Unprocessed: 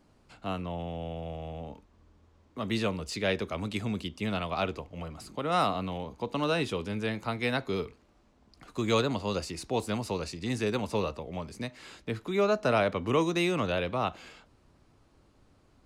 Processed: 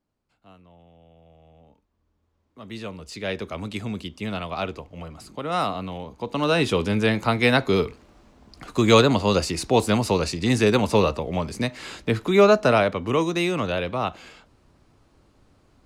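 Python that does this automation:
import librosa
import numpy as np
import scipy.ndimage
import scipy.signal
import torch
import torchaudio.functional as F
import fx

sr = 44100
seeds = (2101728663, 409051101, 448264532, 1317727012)

y = fx.gain(x, sr, db=fx.line((1.07, -17.0), (2.61, -7.5), (3.48, 2.0), (6.14, 2.0), (6.78, 11.0), (12.46, 11.0), (12.97, 4.0)))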